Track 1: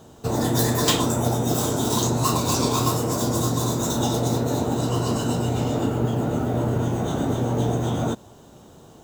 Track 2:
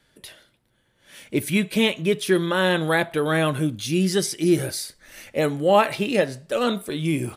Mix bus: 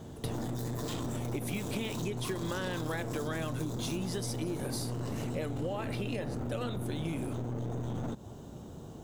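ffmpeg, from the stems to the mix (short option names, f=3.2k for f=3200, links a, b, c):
-filter_complex "[0:a]lowshelf=f=410:g=10.5,alimiter=limit=-14.5dB:level=0:latency=1:release=10,aeval=exprs='clip(val(0),-1,0.0473)':c=same,volume=-5.5dB[a];[1:a]acompressor=threshold=-21dB:ratio=6,volume=-2dB[b];[a][b]amix=inputs=2:normalize=0,acompressor=threshold=-32dB:ratio=6"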